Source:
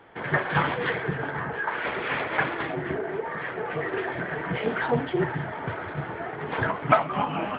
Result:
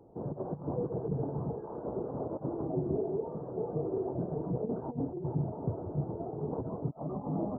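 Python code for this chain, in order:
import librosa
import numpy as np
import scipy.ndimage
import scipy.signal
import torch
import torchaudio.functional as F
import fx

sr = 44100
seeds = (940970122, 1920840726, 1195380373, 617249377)

y = fx.over_compress(x, sr, threshold_db=-28.0, ratio=-0.5)
y = scipy.ndimage.gaussian_filter1d(y, 14.0, mode='constant')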